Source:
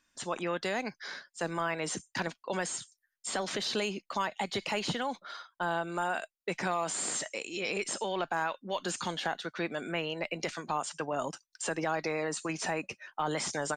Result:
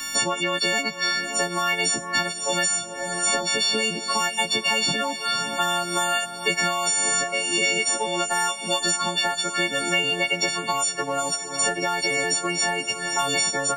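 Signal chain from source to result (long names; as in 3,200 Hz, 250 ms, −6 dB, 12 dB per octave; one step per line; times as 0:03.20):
every partial snapped to a pitch grid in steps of 4 semitones
feedback delay with all-pass diffusion 484 ms, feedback 56%, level −14.5 dB
multiband upward and downward compressor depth 100%
level +4.5 dB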